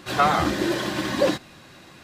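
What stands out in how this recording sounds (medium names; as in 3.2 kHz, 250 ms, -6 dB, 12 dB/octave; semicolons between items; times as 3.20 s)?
noise floor -48 dBFS; spectral tilt -4.5 dB/octave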